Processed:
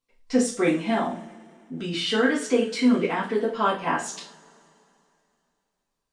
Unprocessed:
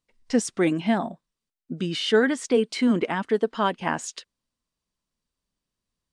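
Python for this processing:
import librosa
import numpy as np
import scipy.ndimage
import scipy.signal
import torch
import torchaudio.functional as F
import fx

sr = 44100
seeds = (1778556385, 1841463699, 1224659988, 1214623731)

y = fx.rev_double_slope(x, sr, seeds[0], early_s=0.36, late_s=2.8, knee_db=-27, drr_db=-7.0)
y = fx.transient(y, sr, attack_db=-3, sustain_db=3, at=(0.94, 2.11))
y = F.gain(torch.from_numpy(y), -6.0).numpy()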